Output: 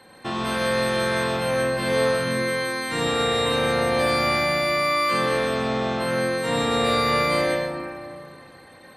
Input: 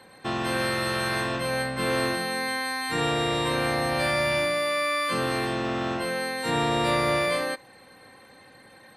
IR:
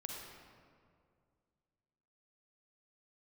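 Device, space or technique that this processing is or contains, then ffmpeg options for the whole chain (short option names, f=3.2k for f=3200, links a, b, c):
stairwell: -filter_complex "[1:a]atrim=start_sample=2205[a];[0:a][a]afir=irnorm=-1:irlink=0,volume=5dB"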